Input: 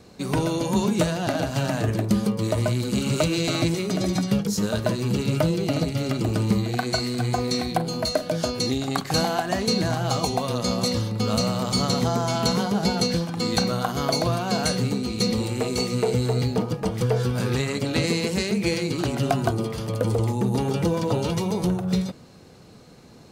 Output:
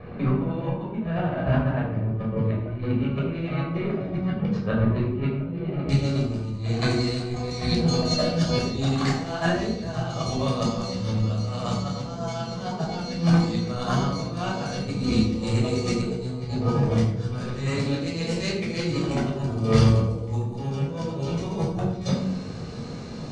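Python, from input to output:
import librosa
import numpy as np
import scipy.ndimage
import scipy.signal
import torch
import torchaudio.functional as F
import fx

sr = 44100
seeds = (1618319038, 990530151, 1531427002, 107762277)

y = fx.lowpass(x, sr, hz=fx.steps((0.0, 2400.0), (5.89, 7400.0)), slope=24)
y = fx.over_compress(y, sr, threshold_db=-30.0, ratio=-0.5)
y = fx.room_shoebox(y, sr, seeds[0], volume_m3=1000.0, walls='furnished', distance_m=5.9)
y = F.gain(torch.from_numpy(y), -3.5).numpy()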